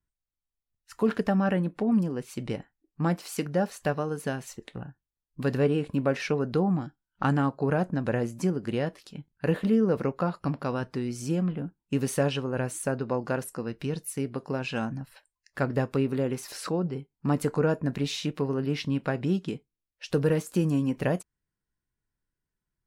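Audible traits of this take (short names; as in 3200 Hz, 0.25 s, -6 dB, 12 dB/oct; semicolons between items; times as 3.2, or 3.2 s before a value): noise floor -89 dBFS; spectral tilt -6.0 dB/oct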